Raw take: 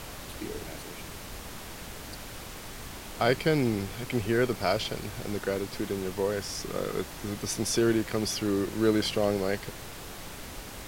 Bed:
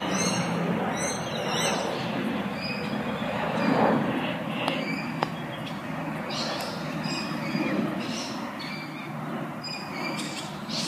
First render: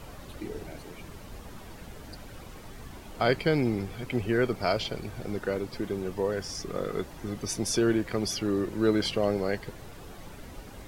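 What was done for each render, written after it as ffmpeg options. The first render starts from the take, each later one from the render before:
-af "afftdn=nr=10:nf=-42"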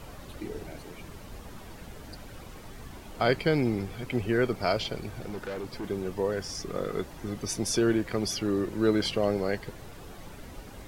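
-filter_complex "[0:a]asettb=1/sr,asplit=3[a][b][c];[a]atrim=end=5.194[d];[b]atrim=start=5.19:end=5.84,asetpts=PTS-STARTPTS,afade=t=in:d=0.004:c=qsin,afade=t=out:st=0.646:d=0.004:c=qsin,asoftclip=type=hard:threshold=-32dB[e];[c]atrim=start=5.836[f];[d][e]acrossfade=d=0.004:c1=hsin:c2=qsin[g];[g][f]acrossfade=d=0.004:c1=qsin:c2=hsin"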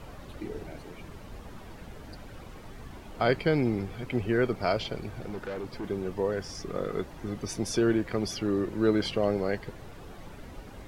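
-af "highshelf=f=4.7k:g=-8"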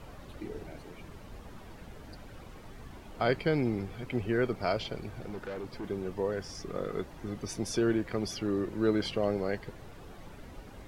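-af "volume=-3dB"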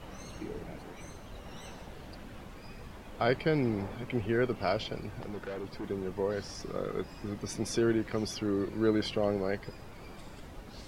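-filter_complex "[1:a]volume=-23.5dB[a];[0:a][a]amix=inputs=2:normalize=0"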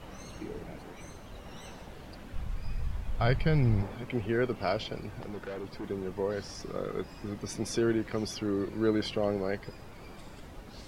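-filter_complex "[0:a]asplit=3[a][b][c];[a]afade=t=out:st=2.33:d=0.02[d];[b]asubboost=boost=11.5:cutoff=100,afade=t=in:st=2.33:d=0.02,afade=t=out:st=3.81:d=0.02[e];[c]afade=t=in:st=3.81:d=0.02[f];[d][e][f]amix=inputs=3:normalize=0"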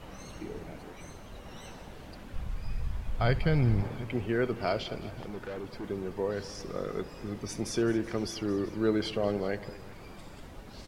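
-af "aecho=1:1:68|217|379:0.106|0.126|0.1"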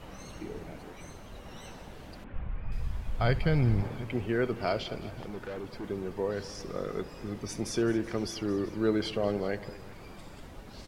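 -filter_complex "[0:a]asettb=1/sr,asplit=3[a][b][c];[a]atrim=end=2.244[d];[b]atrim=start=2.24:end=2.72,asetpts=PTS-STARTPTS,afade=t=in:d=0.004:c=qsin,afade=t=out:st=0.476:d=0.004:c=qsin,lowpass=f=2.6k:w=0.5412,lowpass=f=2.6k:w=1.3066[e];[c]atrim=start=2.716[f];[d][e]acrossfade=d=0.004:c1=hsin:c2=qsin[g];[g][f]acrossfade=d=0.004:c1=qsin:c2=hsin"

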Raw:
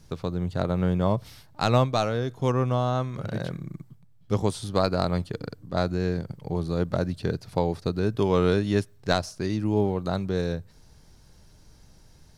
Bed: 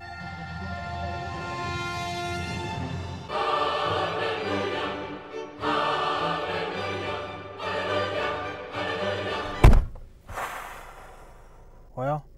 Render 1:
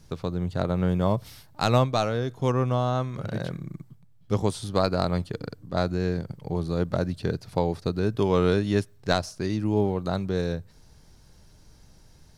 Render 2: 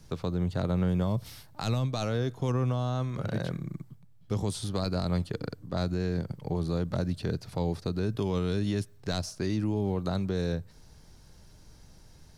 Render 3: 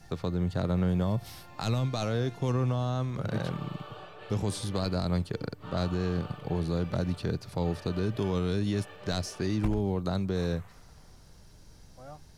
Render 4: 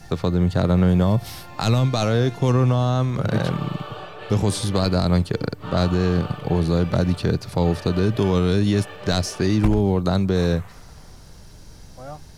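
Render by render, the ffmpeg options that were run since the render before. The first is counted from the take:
-filter_complex "[0:a]asettb=1/sr,asplit=3[a][b][c];[a]atrim=end=0.894[d];[b]atrim=start=0.89:end=1.79,asetpts=PTS-STARTPTS,afade=t=in:d=0.004:c=qsin,afade=t=out:st=0.896:d=0.004:c=qsin,highshelf=f=8.9k:g=6.5[e];[c]atrim=start=1.786[f];[d][e]acrossfade=d=0.004:c1=hsin:c2=qsin[g];[g][f]acrossfade=d=0.004:c1=qsin:c2=hsin"
-filter_complex "[0:a]acrossover=split=270|3000[a][b][c];[b]acompressor=threshold=-29dB:ratio=6[d];[a][d][c]amix=inputs=3:normalize=0,alimiter=limit=-20dB:level=0:latency=1:release=18"
-filter_complex "[1:a]volume=-19.5dB[a];[0:a][a]amix=inputs=2:normalize=0"
-af "volume=10dB"

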